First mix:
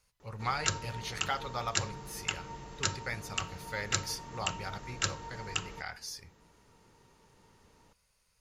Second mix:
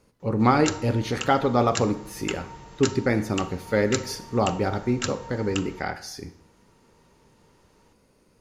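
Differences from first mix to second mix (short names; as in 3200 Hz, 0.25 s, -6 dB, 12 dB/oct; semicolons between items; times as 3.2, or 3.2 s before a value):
speech: remove passive tone stack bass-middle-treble 10-0-10; reverb: on, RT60 0.70 s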